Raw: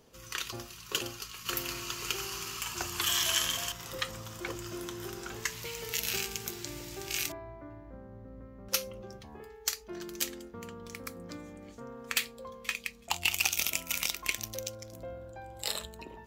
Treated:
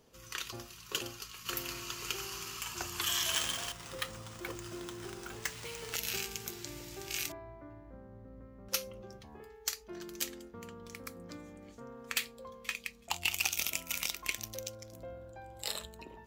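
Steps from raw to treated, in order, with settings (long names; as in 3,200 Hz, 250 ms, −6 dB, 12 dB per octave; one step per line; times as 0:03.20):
0:03.32–0:05.96: sample-rate reduction 14,000 Hz, jitter 0%
level −3.5 dB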